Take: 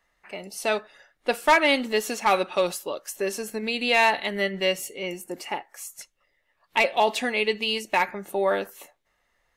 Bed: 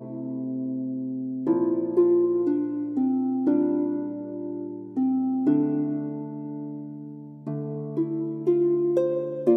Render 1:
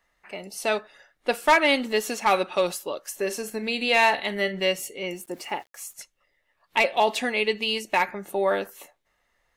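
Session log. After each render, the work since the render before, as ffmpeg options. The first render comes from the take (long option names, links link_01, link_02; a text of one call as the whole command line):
ffmpeg -i in.wav -filter_complex "[0:a]asettb=1/sr,asplit=3[link_01][link_02][link_03];[link_01]atrim=end=3.024[link_04];[link_02]atrim=start=3.02:end=4.64,asetpts=PTS-STARTPTS,afade=type=in:duration=0.004:curve=qsin,afade=type=out:start_time=1.616:duration=0.004:curve=qsin,asplit=2[link_05][link_06];[link_06]adelay=43,volume=-14dB[link_07];[link_05][link_07]amix=inputs=2:normalize=0,atrim=end_sample=71442[link_08];[link_03]atrim=start=4.636[link_09];[link_04][link_08]acrossfade=duration=0.004:curve1=hsin:curve2=qsin[link_10];[link_10][link_09]acrossfade=duration=0.004:curve1=qsin:curve2=hsin,asettb=1/sr,asplit=3[link_11][link_12][link_13];[link_11]atrim=end=5.164[link_14];[link_12]atrim=start=5.16:end=5.94,asetpts=PTS-STARTPTS,afade=type=in:duration=0.004:curve=qsin,afade=type=out:start_time=0.776:duration=0.004:curve=qsin,aeval=exprs='val(0)*gte(abs(val(0)),0.00266)':channel_layout=same[link_15];[link_13]atrim=start=5.936[link_16];[link_14][link_15]acrossfade=duration=0.004:curve1=hsin:curve2=qsin[link_17];[link_17][link_16]acrossfade=duration=0.004:curve1=qsin:curve2=hsin" out.wav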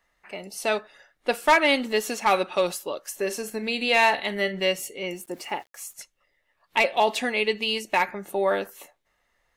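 ffmpeg -i in.wav -af anull out.wav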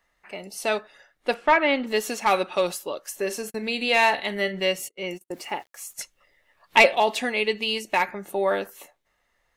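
ffmpeg -i in.wav -filter_complex "[0:a]asplit=3[link_01][link_02][link_03];[link_01]afade=type=out:start_time=1.33:duration=0.02[link_04];[link_02]lowpass=2600,afade=type=in:start_time=1.33:duration=0.02,afade=type=out:start_time=1.86:duration=0.02[link_05];[link_03]afade=type=in:start_time=1.86:duration=0.02[link_06];[link_04][link_05][link_06]amix=inputs=3:normalize=0,asplit=3[link_07][link_08][link_09];[link_07]afade=type=out:start_time=3.49:duration=0.02[link_10];[link_08]agate=range=-40dB:threshold=-38dB:ratio=16:release=100:detection=peak,afade=type=in:start_time=3.49:duration=0.02,afade=type=out:start_time=5.32:duration=0.02[link_11];[link_09]afade=type=in:start_time=5.32:duration=0.02[link_12];[link_10][link_11][link_12]amix=inputs=3:normalize=0,asplit=3[link_13][link_14][link_15];[link_13]afade=type=out:start_time=5.97:duration=0.02[link_16];[link_14]acontrast=81,afade=type=in:start_time=5.97:duration=0.02,afade=type=out:start_time=6.94:duration=0.02[link_17];[link_15]afade=type=in:start_time=6.94:duration=0.02[link_18];[link_16][link_17][link_18]amix=inputs=3:normalize=0" out.wav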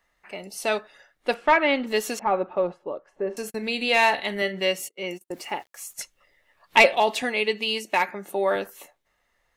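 ffmpeg -i in.wav -filter_complex "[0:a]asettb=1/sr,asplit=3[link_01][link_02][link_03];[link_01]atrim=end=2.194[link_04];[link_02]atrim=start=2.19:end=3.37,asetpts=PTS-STARTPTS,afade=type=in:duration=0.004:curve=qsin,afade=type=out:start_time=1.176:duration=0.004:curve=qsin,lowpass=1000[link_05];[link_03]atrim=start=3.366[link_06];[link_04][link_05]acrossfade=duration=0.004:curve1=hsin:curve2=qsin[link_07];[link_07][link_06]acrossfade=duration=0.004:curve1=qsin:curve2=hsin,asettb=1/sr,asplit=3[link_08][link_09][link_10];[link_08]atrim=end=4.424[link_11];[link_09]atrim=start=4.42:end=5.27,asetpts=PTS-STARTPTS,afade=type=in:duration=0.004:curve=qsin,afade=type=out:start_time=0.846:duration=0.004:curve=qsin,highpass=150[link_12];[link_10]atrim=start=5.266[link_13];[link_11][link_12]acrossfade=duration=0.004:curve1=hsin:curve2=qsin[link_14];[link_14][link_13]acrossfade=duration=0.004:curve1=qsin:curve2=hsin,asettb=1/sr,asplit=3[link_15][link_16][link_17];[link_15]atrim=end=7.224[link_18];[link_16]atrim=start=7.22:end=8.56,asetpts=PTS-STARTPTS,afade=type=in:duration=0.004:curve=qsin,afade=type=out:start_time=1.336:duration=0.004:curve=qsin,highpass=160[link_19];[link_17]atrim=start=8.556[link_20];[link_18][link_19]acrossfade=duration=0.004:curve1=hsin:curve2=qsin[link_21];[link_21][link_20]acrossfade=duration=0.004:curve1=qsin:curve2=hsin" out.wav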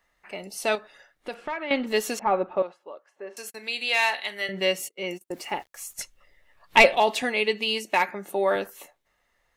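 ffmpeg -i in.wav -filter_complex "[0:a]asettb=1/sr,asplit=3[link_01][link_02][link_03];[link_01]atrim=end=0.754[link_04];[link_02]atrim=start=0.75:end=1.71,asetpts=PTS-STARTPTS,afade=type=in:duration=0.004:curve=qsin,afade=type=out:start_time=0.956:duration=0.004:curve=qsin,acompressor=threshold=-33dB:ratio=3:attack=3.2:release=140:knee=1:detection=peak[link_05];[link_03]atrim=start=1.706[link_06];[link_04][link_05]acrossfade=duration=0.004:curve1=hsin:curve2=qsin[link_07];[link_07][link_06]acrossfade=duration=0.004:curve1=qsin:curve2=hsin,asettb=1/sr,asplit=3[link_08][link_09][link_10];[link_08]atrim=end=2.624[link_11];[link_09]atrim=start=2.62:end=4.49,asetpts=PTS-STARTPTS,afade=type=in:duration=0.004:curve=qsin,afade=type=out:start_time=1.866:duration=0.004:curve=qsin,highpass=frequency=1500:poles=1[link_12];[link_10]atrim=start=4.486[link_13];[link_11][link_12]acrossfade=duration=0.004:curve1=hsin:curve2=qsin[link_14];[link_14][link_13]acrossfade=duration=0.004:curve1=qsin:curve2=hsin,asettb=1/sr,asplit=3[link_15][link_16][link_17];[link_15]atrim=end=5.524[link_18];[link_16]atrim=start=5.52:end=6.99,asetpts=PTS-STARTPTS,afade=type=in:duration=0.004:curve=qsin,afade=type=out:start_time=1.466:duration=0.004:curve=qsin,lowshelf=frequency=96:gain=11.5[link_19];[link_17]atrim=start=6.986[link_20];[link_18][link_19]acrossfade=duration=0.004:curve1=hsin:curve2=qsin[link_21];[link_21][link_20]acrossfade=duration=0.004:curve1=qsin:curve2=hsin" out.wav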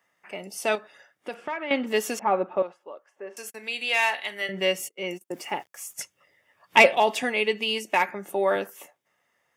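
ffmpeg -i in.wav -af "highpass=frequency=110:width=0.5412,highpass=frequency=110:width=1.3066,bandreject=frequency=4100:width=5.5" out.wav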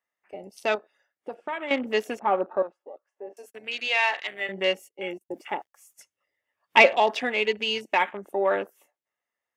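ffmpeg -i in.wav -af "afwtdn=0.0158,equalizer=frequency=150:width_type=o:width=0.61:gain=-10" out.wav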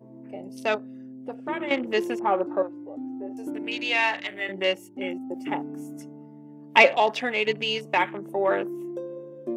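ffmpeg -i in.wav -i bed.wav -filter_complex "[1:a]volume=-11.5dB[link_01];[0:a][link_01]amix=inputs=2:normalize=0" out.wav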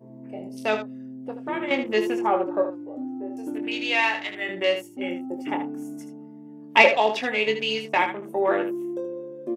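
ffmpeg -i in.wav -af "aecho=1:1:23|78:0.422|0.335" out.wav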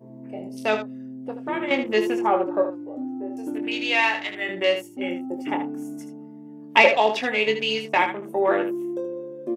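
ffmpeg -i in.wav -af "volume=1.5dB,alimiter=limit=-3dB:level=0:latency=1" out.wav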